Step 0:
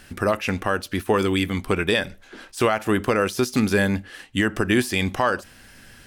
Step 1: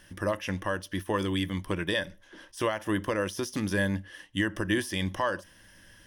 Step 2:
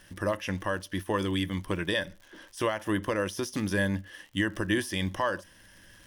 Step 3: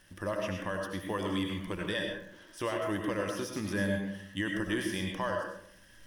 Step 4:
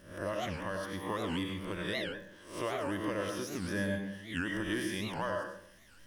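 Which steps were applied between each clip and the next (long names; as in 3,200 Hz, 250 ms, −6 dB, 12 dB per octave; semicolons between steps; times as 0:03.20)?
EQ curve with evenly spaced ripples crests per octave 1.2, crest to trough 9 dB; level −9 dB
surface crackle 110 per second −43 dBFS
comb and all-pass reverb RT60 0.66 s, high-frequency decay 0.5×, pre-delay 55 ms, DRR 1 dB; level −6 dB
peak hold with a rise ahead of every peak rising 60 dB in 0.49 s; wow of a warped record 78 rpm, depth 250 cents; level −3.5 dB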